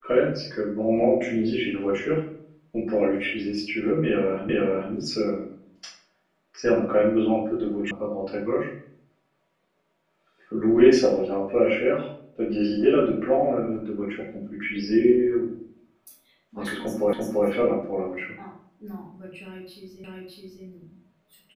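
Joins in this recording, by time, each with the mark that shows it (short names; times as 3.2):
4.49 repeat of the last 0.44 s
7.91 sound cut off
17.13 repeat of the last 0.34 s
20.04 repeat of the last 0.61 s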